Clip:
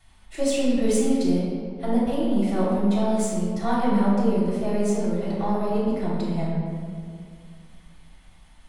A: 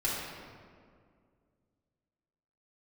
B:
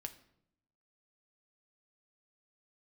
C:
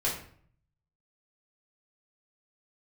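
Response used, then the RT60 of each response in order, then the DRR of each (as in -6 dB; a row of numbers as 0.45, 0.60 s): A; 2.1, 0.75, 0.55 s; -8.5, 6.0, -6.5 dB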